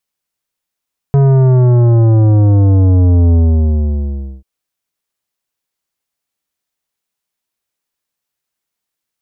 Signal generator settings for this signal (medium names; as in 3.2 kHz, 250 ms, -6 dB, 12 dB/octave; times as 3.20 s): sub drop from 140 Hz, over 3.29 s, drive 12 dB, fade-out 1.09 s, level -7 dB